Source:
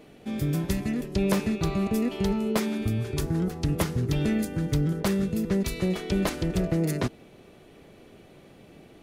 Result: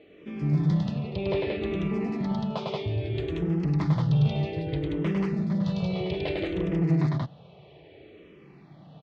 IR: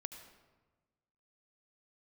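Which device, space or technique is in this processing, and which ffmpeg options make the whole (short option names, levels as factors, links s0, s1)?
barber-pole phaser into a guitar amplifier: -filter_complex "[0:a]asettb=1/sr,asplit=3[s0][s1][s2];[s0]atrim=end=0.834[s3];[s1]atrim=start=0.83:end=1.53,asetpts=PTS-STARTPTS,afade=t=in:d=0.004:c=qsin,afade=t=out:st=0.696:d=0.004:c=qsin,lowpass=f=5000:w=0.5412,lowpass=f=5000:w=1.3066[s4];[s2]atrim=start=1.526[s5];[s3][s4]acrossfade=d=0.004:c1=hsin:c2=qsin[s6];[s6][s5]acrossfade=d=0.004:c1=qsin:c2=hsin,aecho=1:1:102|180.8:0.794|0.891,asplit=2[s7][s8];[s8]afreqshift=-0.62[s9];[s7][s9]amix=inputs=2:normalize=1,asoftclip=type=tanh:threshold=0.119,highpass=78,equalizer=f=150:t=q:w=4:g=7,equalizer=f=240:t=q:w=4:g=-9,equalizer=f=1500:t=q:w=4:g=-8,lowpass=f=3900:w=0.5412,lowpass=f=3900:w=1.3066"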